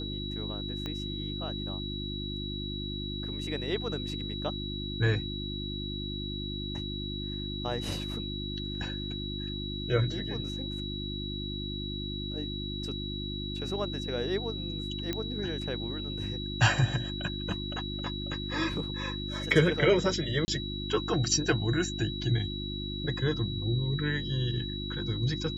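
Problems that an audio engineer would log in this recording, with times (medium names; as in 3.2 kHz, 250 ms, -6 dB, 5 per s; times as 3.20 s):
hum 50 Hz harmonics 7 -37 dBFS
whine 3.9 kHz -38 dBFS
0.86 s: pop -22 dBFS
15.13 s: pop -17 dBFS
20.45–20.48 s: dropout 30 ms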